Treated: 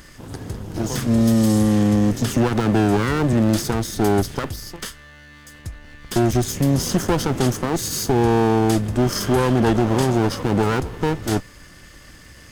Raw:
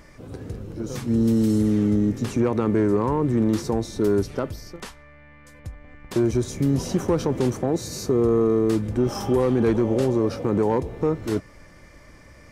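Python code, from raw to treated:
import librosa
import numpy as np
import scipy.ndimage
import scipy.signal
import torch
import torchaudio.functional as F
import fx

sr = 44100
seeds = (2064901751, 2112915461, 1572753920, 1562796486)

y = fx.lower_of_two(x, sr, delay_ms=0.62)
y = fx.high_shelf(y, sr, hz=2800.0, db=9.0)
y = fx.band_squash(y, sr, depth_pct=40, at=(0.74, 3.33))
y = y * 10.0 ** (3.5 / 20.0)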